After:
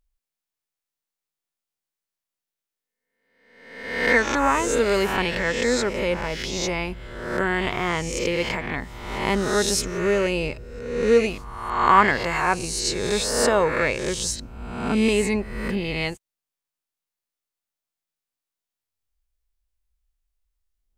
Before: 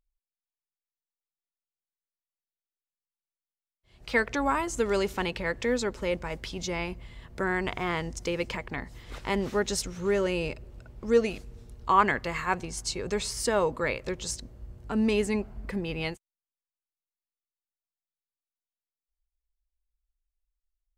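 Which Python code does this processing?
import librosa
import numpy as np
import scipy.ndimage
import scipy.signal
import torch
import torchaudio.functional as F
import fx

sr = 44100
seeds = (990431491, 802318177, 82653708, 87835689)

y = fx.spec_swells(x, sr, rise_s=0.95)
y = y * 10.0 ** (4.0 / 20.0)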